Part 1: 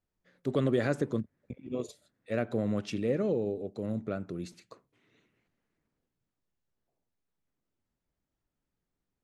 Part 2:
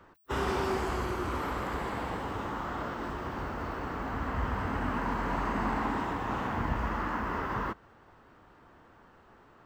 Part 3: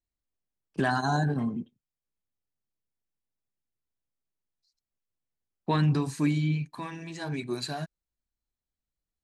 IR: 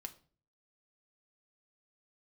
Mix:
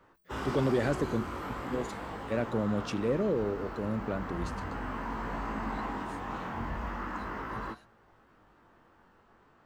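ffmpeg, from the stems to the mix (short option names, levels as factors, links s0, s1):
-filter_complex "[0:a]volume=1.12[s0];[1:a]flanger=delay=18:depth=3.7:speed=0.38,volume=0.631,asplit=2[s1][s2];[s2]volume=0.562[s3];[2:a]highpass=1300,tremolo=f=3.6:d=0.85,volume=0.178[s4];[3:a]atrim=start_sample=2205[s5];[s3][s5]afir=irnorm=-1:irlink=0[s6];[s0][s1][s4][s6]amix=inputs=4:normalize=0,asoftclip=type=tanh:threshold=0.126"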